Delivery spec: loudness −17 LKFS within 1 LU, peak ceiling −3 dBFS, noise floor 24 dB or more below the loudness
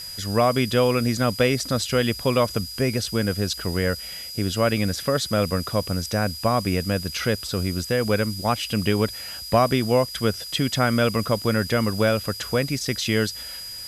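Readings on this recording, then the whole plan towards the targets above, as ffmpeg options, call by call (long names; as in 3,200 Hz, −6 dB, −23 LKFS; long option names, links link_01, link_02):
interfering tone 4,900 Hz; level of the tone −34 dBFS; background noise floor −36 dBFS; target noise floor −47 dBFS; integrated loudness −23.0 LKFS; sample peak −7.5 dBFS; target loudness −17.0 LKFS
→ -af "bandreject=frequency=4900:width=30"
-af "afftdn=noise_reduction=11:noise_floor=-36"
-af "volume=6dB,alimiter=limit=-3dB:level=0:latency=1"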